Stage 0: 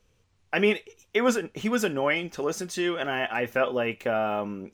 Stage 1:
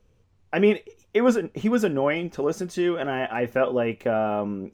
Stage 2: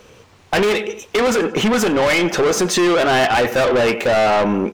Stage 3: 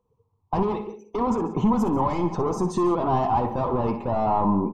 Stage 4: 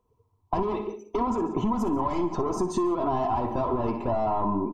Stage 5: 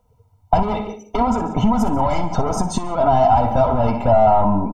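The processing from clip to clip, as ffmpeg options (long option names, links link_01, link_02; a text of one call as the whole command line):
ffmpeg -i in.wav -af "tiltshelf=frequency=1100:gain=5.5" out.wav
ffmpeg -i in.wav -filter_complex "[0:a]asplit=2[link_01][link_02];[link_02]adelay=90,lowpass=frequency=3500:poles=1,volume=-22dB,asplit=2[link_03][link_04];[link_04]adelay=90,lowpass=frequency=3500:poles=1,volume=0.4,asplit=2[link_05][link_06];[link_06]adelay=90,lowpass=frequency=3500:poles=1,volume=0.4[link_07];[link_01][link_03][link_05][link_07]amix=inputs=4:normalize=0,asplit=2[link_08][link_09];[link_09]highpass=frequency=720:poles=1,volume=30dB,asoftclip=type=tanh:threshold=-7.5dB[link_10];[link_08][link_10]amix=inputs=2:normalize=0,lowpass=frequency=7200:poles=1,volume=-6dB,alimiter=limit=-15dB:level=0:latency=1:release=436,volume=4dB" out.wav
ffmpeg -i in.wav -filter_complex "[0:a]afftdn=noise_reduction=24:noise_floor=-30,firequalizer=gain_entry='entry(140,0);entry(550,-15);entry(980,3);entry(1500,-27);entry(11000,-14)':delay=0.05:min_phase=1,asplit=2[link_01][link_02];[link_02]aecho=0:1:60|140|179:0.266|0.141|0.112[link_03];[link_01][link_03]amix=inputs=2:normalize=0" out.wav
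ffmpeg -i in.wav -af "aecho=1:1:3:0.48,bandreject=frequency=307:width_type=h:width=4,bandreject=frequency=614:width_type=h:width=4,bandreject=frequency=921:width_type=h:width=4,bandreject=frequency=1228:width_type=h:width=4,bandreject=frequency=1535:width_type=h:width=4,bandreject=frequency=1842:width_type=h:width=4,bandreject=frequency=2149:width_type=h:width=4,bandreject=frequency=2456:width_type=h:width=4,bandreject=frequency=2763:width_type=h:width=4,bandreject=frequency=3070:width_type=h:width=4,bandreject=frequency=3377:width_type=h:width=4,bandreject=frequency=3684:width_type=h:width=4,bandreject=frequency=3991:width_type=h:width=4,bandreject=frequency=4298:width_type=h:width=4,bandreject=frequency=4605:width_type=h:width=4,bandreject=frequency=4912:width_type=h:width=4,bandreject=frequency=5219:width_type=h:width=4,bandreject=frequency=5526:width_type=h:width=4,bandreject=frequency=5833:width_type=h:width=4,bandreject=frequency=6140:width_type=h:width=4,bandreject=frequency=6447:width_type=h:width=4,bandreject=frequency=6754:width_type=h:width=4,bandreject=frequency=7061:width_type=h:width=4,bandreject=frequency=7368:width_type=h:width=4,bandreject=frequency=7675:width_type=h:width=4,bandreject=frequency=7982:width_type=h:width=4,bandreject=frequency=8289:width_type=h:width=4,bandreject=frequency=8596:width_type=h:width=4,bandreject=frequency=8903:width_type=h:width=4,bandreject=frequency=9210:width_type=h:width=4,acompressor=threshold=-24dB:ratio=6,volume=1.5dB" out.wav
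ffmpeg -i in.wav -af "aecho=1:1:1.4:0.9,volume=8.5dB" out.wav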